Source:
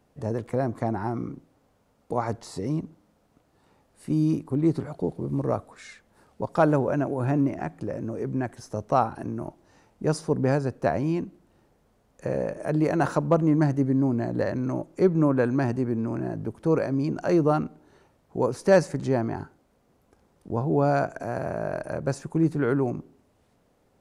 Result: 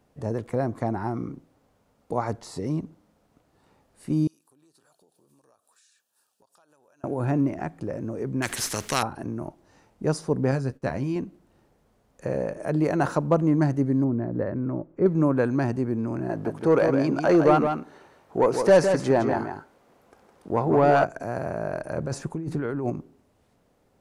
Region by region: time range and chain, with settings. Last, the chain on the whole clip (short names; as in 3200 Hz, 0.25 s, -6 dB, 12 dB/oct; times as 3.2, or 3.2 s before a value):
4.27–7.04 differentiator + compressor 8:1, threshold -58 dBFS + Butterworth band-stop 2100 Hz, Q 4
8.42–9.03 EQ curve 410 Hz 0 dB, 680 Hz -6 dB, 1900 Hz +11 dB + spectral compressor 2:1
10.51–11.16 gate -46 dBFS, range -15 dB + bell 660 Hz -6.5 dB 2.1 oct + doubler 15 ms -9 dB
14.04–15.06 LPF 1300 Hz + bell 790 Hz -6 dB 0.75 oct
16.29–21.04 high shelf 7300 Hz +8.5 dB + overdrive pedal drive 16 dB, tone 1900 Hz, clips at -7.5 dBFS + echo 0.161 s -6.5 dB
21.97–22.9 high shelf 7900 Hz -4 dB + negative-ratio compressor -28 dBFS
whole clip: dry